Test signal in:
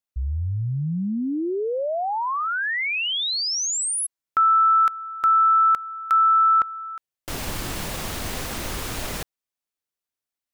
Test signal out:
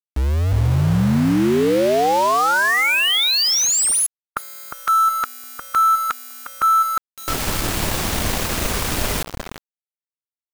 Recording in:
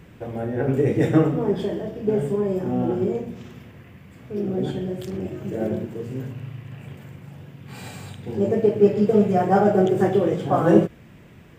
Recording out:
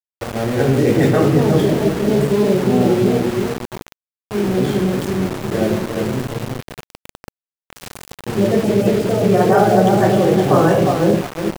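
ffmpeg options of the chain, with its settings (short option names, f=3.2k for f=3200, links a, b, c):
-filter_complex "[0:a]asplit=2[a][b];[b]adelay=356,lowpass=f=1k:p=1,volume=-4dB,asplit=2[c][d];[d]adelay=356,lowpass=f=1k:p=1,volume=0.37,asplit=2[e][f];[f]adelay=356,lowpass=f=1k:p=1,volume=0.37,asplit=2[g][h];[h]adelay=356,lowpass=f=1k:p=1,volume=0.37,asplit=2[i][j];[j]adelay=356,lowpass=f=1k:p=1,volume=0.37[k];[a][c][e][g][i][k]amix=inputs=6:normalize=0,aeval=exprs='val(0)*gte(abs(val(0)),0.0335)':c=same,afftfilt=real='re*lt(hypot(re,im),1.12)':imag='im*lt(hypot(re,im),1.12)':win_size=1024:overlap=0.75,volume=7.5dB"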